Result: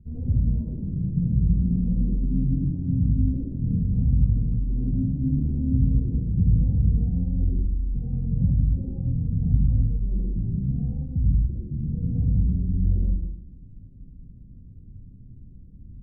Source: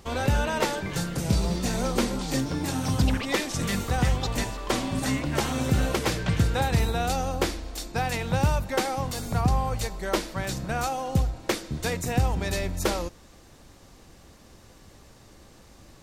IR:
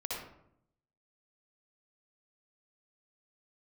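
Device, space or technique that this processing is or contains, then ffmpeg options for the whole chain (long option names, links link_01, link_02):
club heard from the street: -filter_complex "[0:a]alimiter=limit=-18.5dB:level=0:latency=1,lowpass=frequency=210:width=0.5412,lowpass=frequency=210:width=1.3066[link_01];[1:a]atrim=start_sample=2205[link_02];[link_01][link_02]afir=irnorm=-1:irlink=0,asettb=1/sr,asplit=3[link_03][link_04][link_05];[link_03]atrim=end=11.044[link_06];[link_04]atrim=start=11.04:end=12.06,asetpts=PTS-STARTPTS,afade=type=in:duration=0.004:curve=qsin,afade=type=out:start_time=1.016:duration=0.004:curve=qsin,equalizer=frequency=2100:width_type=o:width=2.9:gain=-10.5[link_07];[link_05]atrim=start=12.056[link_08];[link_06][link_07]acrossfade=duration=0.004:curve1=hsin:curve2=qsin[link_09];[link_09][link_08]acrossfade=duration=0.004:curve1=qsin:curve2=hsin,volume=6.5dB"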